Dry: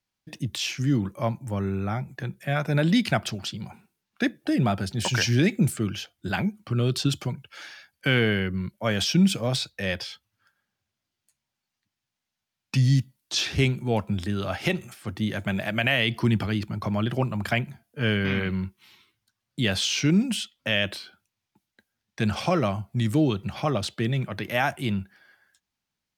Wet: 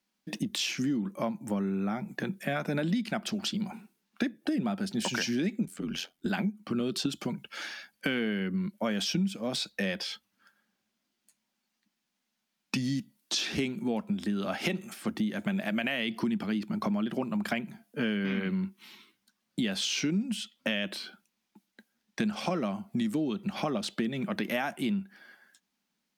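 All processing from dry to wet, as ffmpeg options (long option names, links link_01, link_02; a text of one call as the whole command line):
ffmpeg -i in.wav -filter_complex "[0:a]asettb=1/sr,asplit=3[link_01][link_02][link_03];[link_01]atrim=end=5.654[link_04];[link_02]atrim=start=5.65:end=6.26,asetpts=PTS-STARTPTS,afade=type=in:duration=0.004:curve=qsin,afade=type=out:start_time=0.606:duration=0.004:curve=qsin,aeval=exprs='val(0)*sin(2*PI*44*n/s)':channel_layout=same,acompressor=threshold=-30dB:ratio=2.5:attack=3.2:release=140:knee=1:detection=peak[link_05];[link_03]atrim=start=6.256[link_06];[link_04][link_05]acrossfade=duration=0.004:curve1=hsin:curve2=qsin[link_07];[link_07][link_06]acrossfade=duration=0.004:curve1=qsin:curve2=hsin,lowshelf=frequency=150:width_type=q:width=3:gain=-11,acompressor=threshold=-31dB:ratio=6,volume=3dB" out.wav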